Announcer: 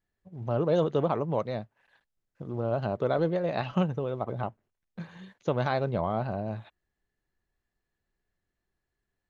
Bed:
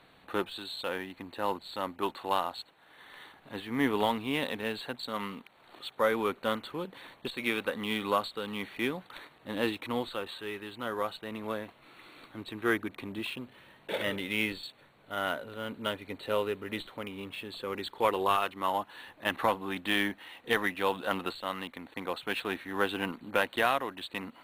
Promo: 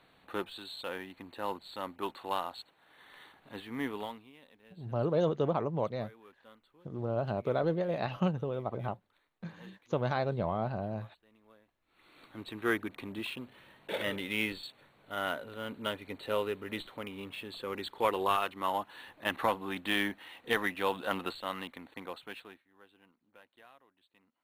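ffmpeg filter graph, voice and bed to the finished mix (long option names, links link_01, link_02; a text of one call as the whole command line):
ffmpeg -i stem1.wav -i stem2.wav -filter_complex "[0:a]adelay=4450,volume=-3.5dB[link_01];[1:a]volume=20dB,afade=type=out:start_time=3.6:duration=0.72:silence=0.0794328,afade=type=in:start_time=11.86:duration=0.55:silence=0.0595662,afade=type=out:start_time=21.6:duration=1.03:silence=0.0354813[link_02];[link_01][link_02]amix=inputs=2:normalize=0" out.wav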